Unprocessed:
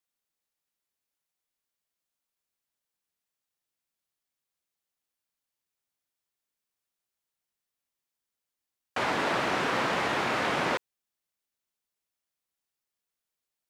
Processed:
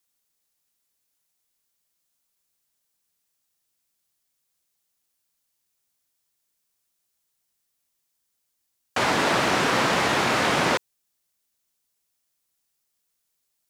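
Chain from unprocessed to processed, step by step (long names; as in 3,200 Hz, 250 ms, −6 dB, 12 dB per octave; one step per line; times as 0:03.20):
bass and treble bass +3 dB, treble +7 dB
level +5.5 dB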